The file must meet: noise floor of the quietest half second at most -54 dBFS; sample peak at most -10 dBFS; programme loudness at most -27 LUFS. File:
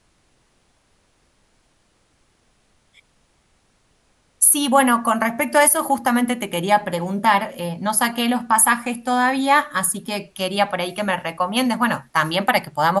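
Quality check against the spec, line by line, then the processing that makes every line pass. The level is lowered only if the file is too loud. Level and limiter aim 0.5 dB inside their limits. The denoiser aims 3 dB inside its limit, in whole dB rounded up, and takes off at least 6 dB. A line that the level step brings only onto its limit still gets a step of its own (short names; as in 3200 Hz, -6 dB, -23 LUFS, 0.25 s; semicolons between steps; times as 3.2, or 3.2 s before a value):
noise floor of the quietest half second -62 dBFS: OK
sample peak -3.5 dBFS: fail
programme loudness -19.0 LUFS: fail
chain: gain -8.5 dB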